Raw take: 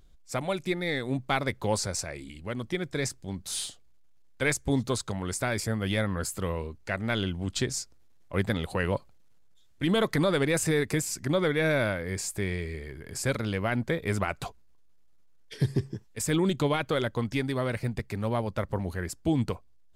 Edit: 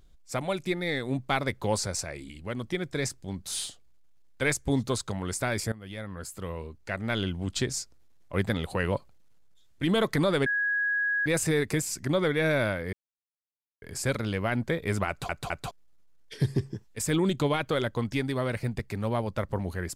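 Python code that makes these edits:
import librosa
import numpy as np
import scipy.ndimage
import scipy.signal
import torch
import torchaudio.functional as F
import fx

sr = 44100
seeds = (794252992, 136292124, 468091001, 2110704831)

y = fx.edit(x, sr, fx.fade_in_from(start_s=5.72, length_s=1.55, floor_db=-17.0),
    fx.insert_tone(at_s=10.46, length_s=0.8, hz=1660.0, db=-24.0),
    fx.silence(start_s=12.13, length_s=0.89),
    fx.stutter_over(start_s=14.28, slice_s=0.21, count=3), tone=tone)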